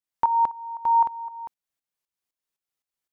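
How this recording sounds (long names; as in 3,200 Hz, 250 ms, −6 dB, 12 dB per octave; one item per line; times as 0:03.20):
tremolo saw up 3.9 Hz, depth 75%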